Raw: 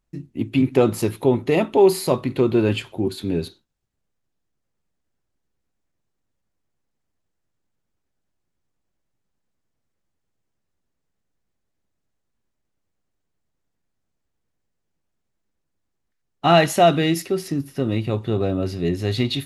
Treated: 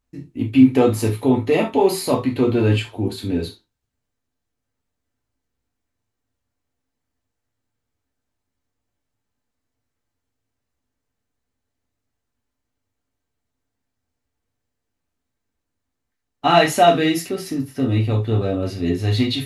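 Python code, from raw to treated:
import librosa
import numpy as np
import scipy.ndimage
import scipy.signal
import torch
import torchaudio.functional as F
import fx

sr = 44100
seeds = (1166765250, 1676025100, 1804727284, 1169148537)

y = fx.rev_gated(x, sr, seeds[0], gate_ms=100, shape='falling', drr_db=-0.5)
y = y * librosa.db_to_amplitude(-1.5)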